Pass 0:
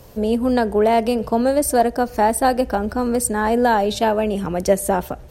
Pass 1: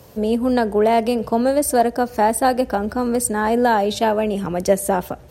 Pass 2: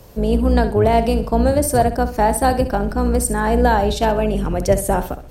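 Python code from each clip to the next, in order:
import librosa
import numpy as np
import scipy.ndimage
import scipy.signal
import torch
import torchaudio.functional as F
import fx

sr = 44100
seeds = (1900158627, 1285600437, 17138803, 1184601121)

y1 = scipy.signal.sosfilt(scipy.signal.butter(2, 76.0, 'highpass', fs=sr, output='sos'), x)
y2 = fx.octave_divider(y1, sr, octaves=2, level_db=2.0)
y2 = fx.echo_feedback(y2, sr, ms=65, feedback_pct=29, wet_db=-12.0)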